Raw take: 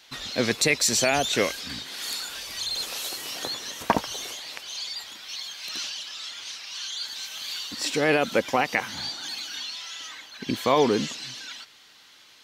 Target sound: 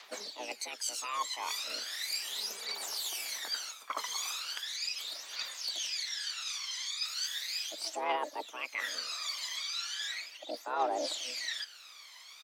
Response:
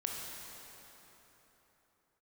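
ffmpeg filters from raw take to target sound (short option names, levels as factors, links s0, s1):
-filter_complex "[0:a]areverse,acompressor=threshold=0.02:ratio=16,areverse,afreqshift=370,asplit=3[s0][s1][s2];[s1]asetrate=22050,aresample=44100,atempo=2,volume=0.224[s3];[s2]asetrate=55563,aresample=44100,atempo=0.793701,volume=0.158[s4];[s0][s3][s4]amix=inputs=3:normalize=0,aphaser=in_gain=1:out_gain=1:delay=1:decay=0.71:speed=0.37:type=triangular,volume=0.75"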